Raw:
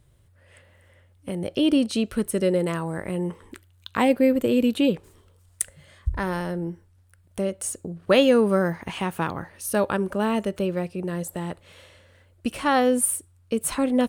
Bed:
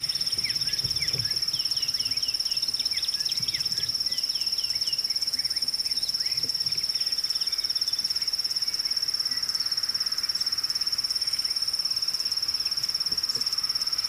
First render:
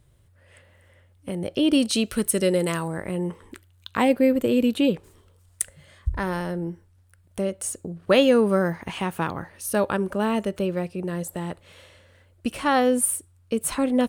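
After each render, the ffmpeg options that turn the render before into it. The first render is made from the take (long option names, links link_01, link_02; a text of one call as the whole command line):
ffmpeg -i in.wav -filter_complex "[0:a]asettb=1/sr,asplit=3[link_01][link_02][link_03];[link_01]atrim=end=1.734[link_04];[link_02]atrim=start=1.73:end=2.88,asetpts=PTS-STARTPTS,afade=type=in:duration=0.004:curve=qsin,afade=type=out:start_time=1.146:duration=0.004:curve=qsin,highshelf=frequency=2400:gain=9[link_05];[link_03]atrim=start=2.876[link_06];[link_04][link_05]acrossfade=duration=0.004:curve1=hsin:curve2=qsin[link_07];[link_07][link_06]acrossfade=duration=0.004:curve1=qsin:curve2=hsin" out.wav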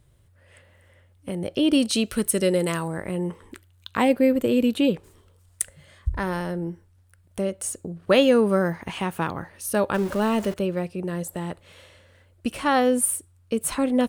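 ffmpeg -i in.wav -filter_complex "[0:a]asettb=1/sr,asplit=3[link_01][link_02][link_03];[link_01]atrim=end=9.944[link_04];[link_02]atrim=start=9.94:end=10.54,asetpts=PTS-STARTPTS,afade=type=in:duration=0.004:curve=qsin,afade=type=out:start_time=0.596:duration=0.004:curve=qsin,aeval=exprs='val(0)+0.5*0.0251*sgn(val(0))':channel_layout=same[link_05];[link_03]atrim=start=10.536[link_06];[link_04][link_05]acrossfade=duration=0.004:curve1=hsin:curve2=qsin[link_07];[link_07][link_06]acrossfade=duration=0.004:curve1=qsin:curve2=hsin" out.wav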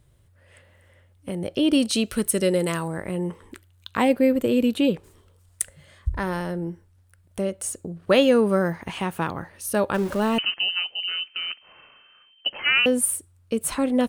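ffmpeg -i in.wav -filter_complex "[0:a]asettb=1/sr,asplit=3[link_01][link_02][link_03];[link_01]atrim=end=10.384[link_04];[link_02]atrim=start=10.38:end=12.86,asetpts=PTS-STARTPTS,afade=type=in:duration=0.004:curve=qsin,afade=type=out:start_time=2.476:duration=0.004:curve=qsin,lowpass=frequency=2700:width_type=q:width=0.5098,lowpass=frequency=2700:width_type=q:width=0.6013,lowpass=frequency=2700:width_type=q:width=0.9,lowpass=frequency=2700:width_type=q:width=2.563,afreqshift=-3200[link_05];[link_03]atrim=start=12.856[link_06];[link_04][link_05]acrossfade=duration=0.004:curve1=hsin:curve2=qsin[link_07];[link_07][link_06]acrossfade=duration=0.004:curve1=qsin:curve2=hsin" out.wav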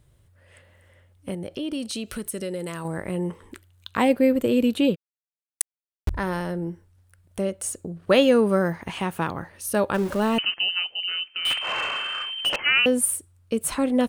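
ffmpeg -i in.wav -filter_complex "[0:a]asettb=1/sr,asplit=3[link_01][link_02][link_03];[link_01]atrim=end=1.344[link_04];[link_02]atrim=start=1.34:end=2.85,asetpts=PTS-STARTPTS,afade=type=in:duration=0.004:curve=qsin,afade=type=out:start_time=1.506:duration=0.004:curve=qsin,acompressor=threshold=-31dB:ratio=2.5:attack=3.2:release=140:knee=1:detection=peak[link_05];[link_03]atrim=start=2.846[link_06];[link_04][link_05]acrossfade=duration=0.004:curve1=hsin:curve2=qsin[link_07];[link_07][link_06]acrossfade=duration=0.004:curve1=qsin:curve2=hsin,asplit=3[link_08][link_09][link_10];[link_08]afade=type=out:start_time=4.94:duration=0.02[link_11];[link_09]aeval=exprs='val(0)*gte(abs(val(0)),0.0841)':channel_layout=same,afade=type=in:start_time=4.94:duration=0.02,afade=type=out:start_time=6.09:duration=0.02[link_12];[link_10]afade=type=in:start_time=6.09:duration=0.02[link_13];[link_11][link_12][link_13]amix=inputs=3:normalize=0,asettb=1/sr,asplit=3[link_14][link_15][link_16];[link_14]atrim=end=11.454[link_17];[link_15]atrim=start=11.45:end=12.56,asetpts=PTS-STARTPTS,afade=type=in:duration=0.004:curve=qsin,afade=type=out:start_time=1.106:duration=0.004:curve=qsin,asplit=2[link_18][link_19];[link_19]highpass=frequency=720:poles=1,volume=36dB,asoftclip=type=tanh:threshold=-13.5dB[link_20];[link_18][link_20]amix=inputs=2:normalize=0,lowpass=frequency=2800:poles=1,volume=-6dB[link_21];[link_16]atrim=start=12.556[link_22];[link_17][link_21]acrossfade=duration=0.004:curve1=hsin:curve2=qsin[link_23];[link_23][link_22]acrossfade=duration=0.004:curve1=qsin:curve2=hsin" out.wav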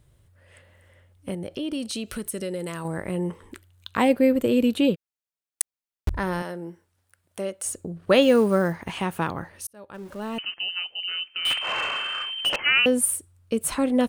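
ffmpeg -i in.wav -filter_complex "[0:a]asettb=1/sr,asplit=3[link_01][link_02][link_03];[link_01]atrim=end=6.424[link_04];[link_02]atrim=start=6.42:end=7.66,asetpts=PTS-STARTPTS,afade=type=in:duration=0.004:curve=qsin,afade=type=out:start_time=1.236:duration=0.004:curve=qsin,highpass=frequency=470:poles=1[link_05];[link_03]atrim=start=7.656[link_06];[link_04][link_05]acrossfade=duration=0.004:curve1=hsin:curve2=qsin[link_07];[link_07][link_06]acrossfade=duration=0.004:curve1=qsin:curve2=hsin,asettb=1/sr,asplit=3[link_08][link_09][link_10];[link_08]atrim=end=8.224[link_11];[link_09]atrim=start=8.22:end=8.92,asetpts=PTS-STARTPTS,afade=type=in:duration=0.004:curve=qsin,afade=type=out:start_time=0.696:duration=0.004:curve=qsin,acrusher=bits=8:mode=log:mix=0:aa=0.000001[link_12];[link_10]atrim=start=8.916[link_13];[link_11][link_12]acrossfade=duration=0.004:curve1=hsin:curve2=qsin[link_14];[link_14][link_13]acrossfade=duration=0.004:curve1=qsin:curve2=hsin,asplit=2[link_15][link_16];[link_15]atrim=end=9.67,asetpts=PTS-STARTPTS,afade=type=out:start_time=9.666:duration=0.004:curve=hsin[link_17];[link_16]atrim=start=9.67,asetpts=PTS-STARTPTS,afade=type=in:duration=1.79[link_18];[link_17][link_18]concat=n=2:v=0:a=1" out.wav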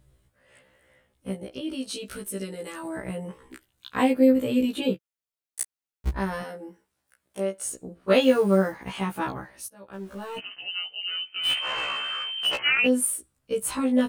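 ffmpeg -i in.wav -af "afftfilt=real='re*1.73*eq(mod(b,3),0)':imag='im*1.73*eq(mod(b,3),0)':win_size=2048:overlap=0.75" out.wav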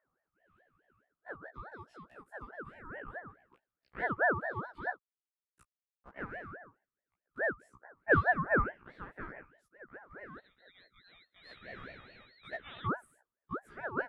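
ffmpeg -i in.wav -af "bandpass=frequency=590:width_type=q:width=5.2:csg=0,aeval=exprs='val(0)*sin(2*PI*930*n/s+930*0.35/4.7*sin(2*PI*4.7*n/s))':channel_layout=same" out.wav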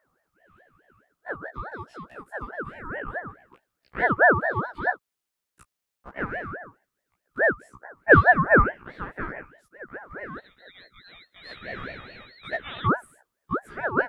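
ffmpeg -i in.wav -af "volume=11.5dB" out.wav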